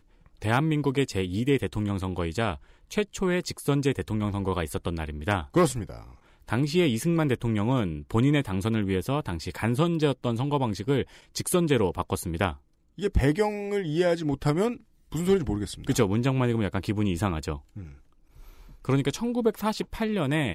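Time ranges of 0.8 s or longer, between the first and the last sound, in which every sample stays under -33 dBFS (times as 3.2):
17.84–18.85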